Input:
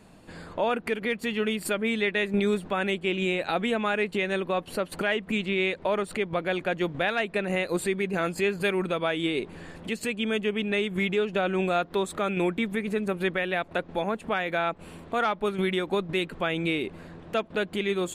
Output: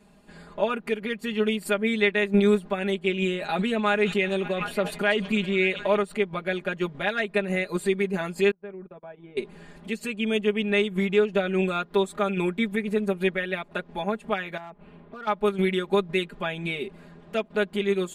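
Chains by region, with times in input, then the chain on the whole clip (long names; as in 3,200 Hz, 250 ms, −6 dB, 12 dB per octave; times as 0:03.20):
0:03.35–0:05.97: echo through a band-pass that steps 188 ms, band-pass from 5,900 Hz, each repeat −0.7 octaves, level −8 dB + level that may fall only so fast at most 70 dB per second
0:08.51–0:09.37: low-pass filter 1,100 Hz + noise gate −30 dBFS, range −34 dB + downward compressor 2.5 to 1, threshold −38 dBFS
0:14.57–0:15.27: high-frequency loss of the air 360 metres + downward compressor 2 to 1, threshold −36 dBFS + hard clipping −28 dBFS
whole clip: comb filter 4.9 ms, depth 99%; expander for the loud parts 1.5 to 1, over −30 dBFS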